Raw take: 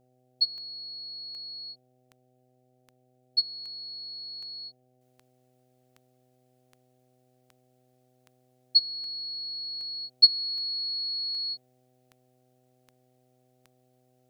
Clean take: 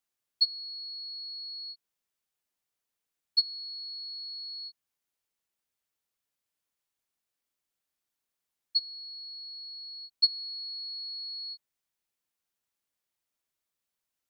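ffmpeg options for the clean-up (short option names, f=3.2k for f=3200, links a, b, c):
-af "adeclick=t=4,bandreject=f=126.6:t=h:w=4,bandreject=f=253.2:t=h:w=4,bandreject=f=379.8:t=h:w=4,bandreject=f=506.4:t=h:w=4,bandreject=f=633:t=h:w=4,bandreject=f=759.6:t=h:w=4,asetnsamples=n=441:p=0,asendcmd='5.01 volume volume -7dB',volume=0dB"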